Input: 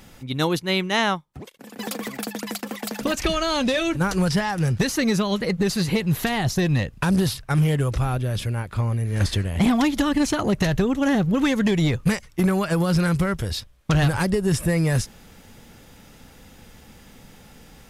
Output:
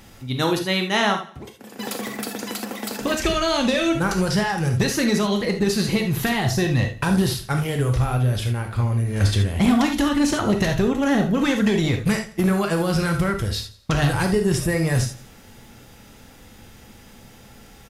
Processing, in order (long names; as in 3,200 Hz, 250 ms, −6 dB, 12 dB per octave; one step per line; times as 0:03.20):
on a send: repeating echo 87 ms, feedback 40%, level −17.5 dB
on the sum: reverb whose tail is shaped and stops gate 100 ms flat, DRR 3.5 dB